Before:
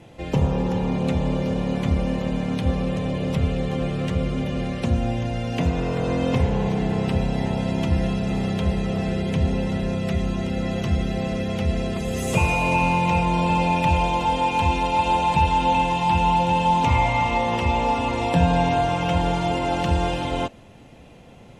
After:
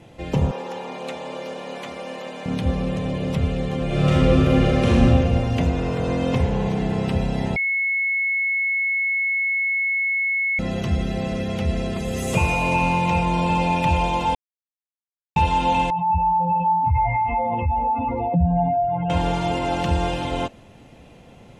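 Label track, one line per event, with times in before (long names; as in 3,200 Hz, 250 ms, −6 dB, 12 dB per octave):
0.510000	2.460000	high-pass filter 530 Hz
3.850000	5.040000	thrown reverb, RT60 2.5 s, DRR −8 dB
7.560000	10.590000	beep over 2,190 Hz −19 dBFS
14.350000	15.360000	silence
15.900000	19.100000	expanding power law on the bin magnitudes exponent 2.5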